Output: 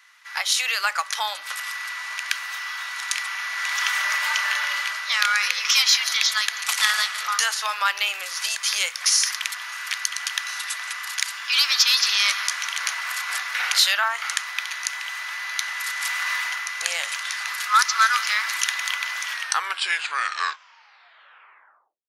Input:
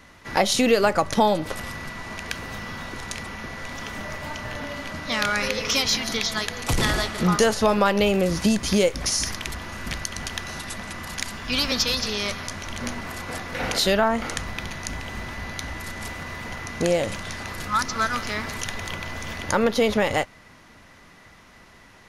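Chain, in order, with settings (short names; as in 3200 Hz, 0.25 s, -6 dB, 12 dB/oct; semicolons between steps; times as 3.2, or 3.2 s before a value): tape stop at the end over 2.86 s; AGC gain up to 16 dB; HPF 1200 Hz 24 dB/oct; gain -1.5 dB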